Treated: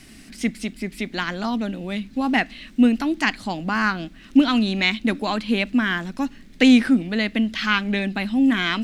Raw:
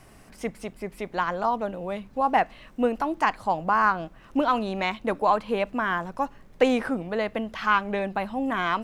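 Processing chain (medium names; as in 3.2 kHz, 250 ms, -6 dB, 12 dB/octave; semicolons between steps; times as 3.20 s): graphic EQ 125/250/500/1000/2000/4000/8000 Hz -6/+12/-9/-11/+5/+9/+4 dB; trim +4 dB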